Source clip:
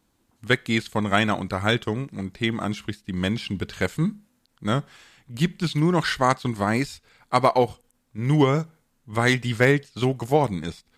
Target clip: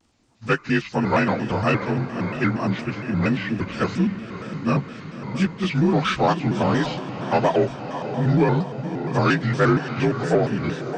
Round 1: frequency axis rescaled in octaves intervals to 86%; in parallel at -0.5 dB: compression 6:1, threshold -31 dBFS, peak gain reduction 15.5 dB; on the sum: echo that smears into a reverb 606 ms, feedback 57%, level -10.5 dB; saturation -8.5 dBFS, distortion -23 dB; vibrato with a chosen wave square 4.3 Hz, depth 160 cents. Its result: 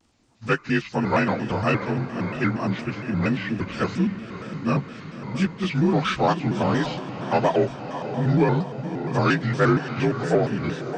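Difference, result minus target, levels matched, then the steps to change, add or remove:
compression: peak gain reduction +6.5 dB
change: compression 6:1, threshold -23.5 dBFS, peak gain reduction 9.5 dB

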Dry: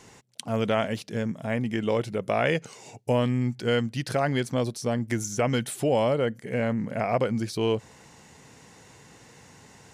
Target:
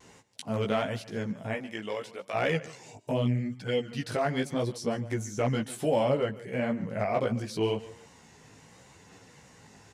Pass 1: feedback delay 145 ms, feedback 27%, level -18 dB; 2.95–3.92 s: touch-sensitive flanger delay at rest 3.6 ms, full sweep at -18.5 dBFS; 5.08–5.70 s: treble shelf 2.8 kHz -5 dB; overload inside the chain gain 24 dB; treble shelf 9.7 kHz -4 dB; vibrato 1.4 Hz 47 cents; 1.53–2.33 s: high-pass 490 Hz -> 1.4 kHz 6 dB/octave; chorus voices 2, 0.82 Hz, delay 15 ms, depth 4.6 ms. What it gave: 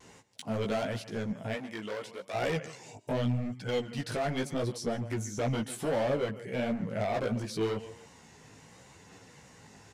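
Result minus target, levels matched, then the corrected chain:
overload inside the chain: distortion +21 dB
feedback delay 145 ms, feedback 27%, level -18 dB; 2.95–3.92 s: touch-sensitive flanger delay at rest 3.6 ms, full sweep at -18.5 dBFS; 5.08–5.70 s: treble shelf 2.8 kHz -5 dB; overload inside the chain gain 15 dB; treble shelf 9.7 kHz -4 dB; vibrato 1.4 Hz 47 cents; 1.53–2.33 s: high-pass 490 Hz -> 1.4 kHz 6 dB/octave; chorus voices 2, 0.82 Hz, delay 15 ms, depth 4.6 ms

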